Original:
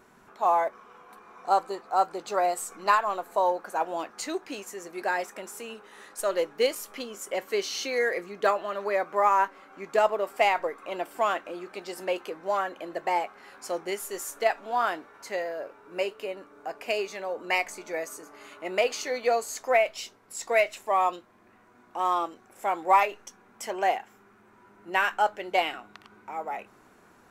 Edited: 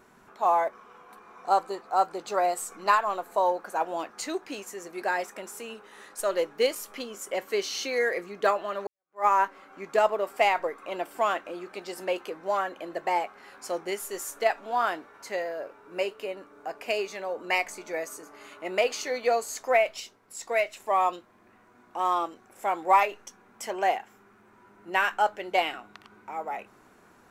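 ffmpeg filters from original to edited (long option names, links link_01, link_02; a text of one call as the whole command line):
ffmpeg -i in.wav -filter_complex "[0:a]asplit=4[link_01][link_02][link_03][link_04];[link_01]atrim=end=8.87,asetpts=PTS-STARTPTS,afade=type=out:start_time=8.866:duration=0.004:curve=hsin[link_05];[link_02]atrim=start=8.87:end=20.002,asetpts=PTS-STARTPTS,afade=type=in:duration=0.38:curve=exp[link_06];[link_03]atrim=start=19.998:end=20.802,asetpts=PTS-STARTPTS,volume=-3dB[link_07];[link_04]atrim=start=20.798[link_08];[link_05][link_06]concat=n=2:v=0:a=1[link_09];[link_09][link_07]acrossfade=duration=0.004:curve1=hsin:curve2=hsin[link_10];[link_10][link_08]acrossfade=duration=0.004:curve1=hsin:curve2=hsin" out.wav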